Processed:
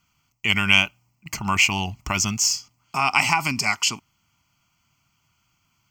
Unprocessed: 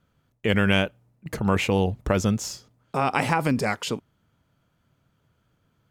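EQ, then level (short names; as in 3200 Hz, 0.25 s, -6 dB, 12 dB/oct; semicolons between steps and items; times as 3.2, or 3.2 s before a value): tilt shelf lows -9.5 dB, about 1100 Hz; notch 1300 Hz, Q 17; fixed phaser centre 2500 Hz, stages 8; +5.5 dB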